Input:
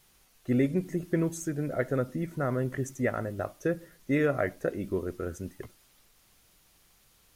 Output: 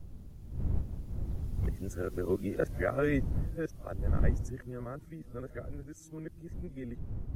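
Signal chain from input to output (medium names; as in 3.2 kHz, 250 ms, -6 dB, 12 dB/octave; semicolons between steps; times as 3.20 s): reverse the whole clip; Doppler pass-by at 2.31 s, 14 m/s, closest 8.9 m; wind noise 85 Hz -35 dBFS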